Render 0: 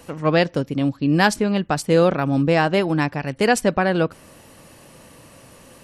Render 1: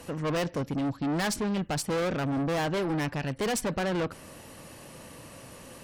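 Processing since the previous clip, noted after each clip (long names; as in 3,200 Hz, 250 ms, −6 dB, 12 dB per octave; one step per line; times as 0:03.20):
tube saturation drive 26 dB, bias 0.2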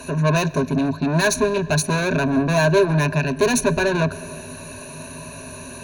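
EQ curve with evenly spaced ripples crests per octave 1.5, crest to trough 18 dB
comb and all-pass reverb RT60 3.8 s, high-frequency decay 0.5×, pre-delay 65 ms, DRR 19 dB
level +7 dB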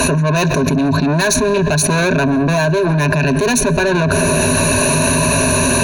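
envelope flattener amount 100%
level −1 dB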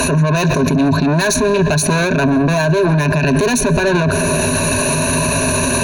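brickwall limiter −12.5 dBFS, peak gain reduction 10 dB
level +5.5 dB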